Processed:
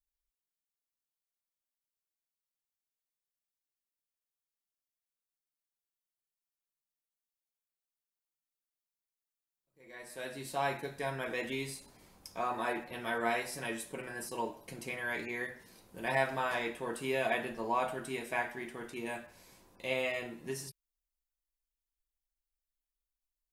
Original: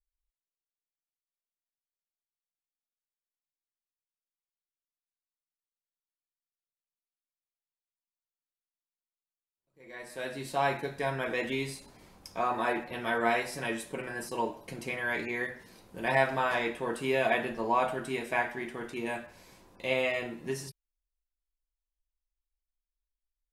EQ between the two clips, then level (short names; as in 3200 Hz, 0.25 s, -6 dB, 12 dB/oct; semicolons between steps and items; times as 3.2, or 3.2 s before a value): high shelf 6900 Hz +8 dB; -5.0 dB